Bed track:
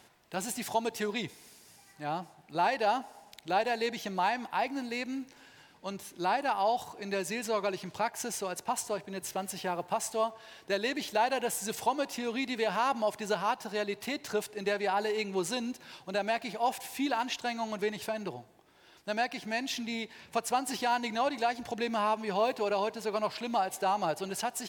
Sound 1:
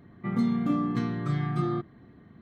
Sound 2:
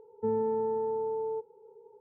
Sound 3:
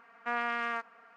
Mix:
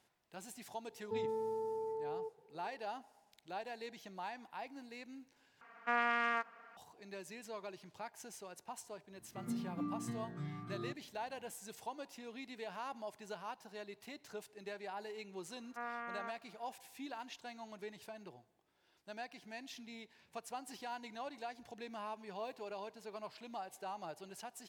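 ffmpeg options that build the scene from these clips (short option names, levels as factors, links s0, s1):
-filter_complex "[3:a]asplit=2[s0][s1];[0:a]volume=0.168[s2];[2:a]equalizer=f=220:w=1.5:g=-5[s3];[1:a]asplit=2[s4][s5];[s5]adelay=7.2,afreqshift=1.3[s6];[s4][s6]amix=inputs=2:normalize=1[s7];[s1]lowpass=1600[s8];[s2]asplit=2[s9][s10];[s9]atrim=end=5.614[s11];[s0]atrim=end=1.16,asetpts=PTS-STARTPTS,volume=0.891[s12];[s10]atrim=start=6.766[s13];[s3]atrim=end=2,asetpts=PTS-STARTPTS,volume=0.398,afade=t=in:d=0.004:c=hsin,afade=t=out:st=1.996:d=0.004:c=hsin,adelay=880[s14];[s7]atrim=end=2.41,asetpts=PTS-STARTPTS,volume=0.237,afade=t=in:d=0.004:c=hsin,afade=t=out:st=2.406:d=0.004:c=hsin,adelay=9110[s15];[s8]atrim=end=1.16,asetpts=PTS-STARTPTS,volume=0.335,afade=t=in:d=0.004:c=hsin,afade=t=out:st=1.156:d=0.004:c=hsin,adelay=15500[s16];[s11][s12]acrossfade=d=0.004:c1=hsin:c2=hsin[s17];[s17][s13]acrossfade=d=0.004:c1=hsin:c2=hsin[s18];[s18][s14][s15][s16]amix=inputs=4:normalize=0"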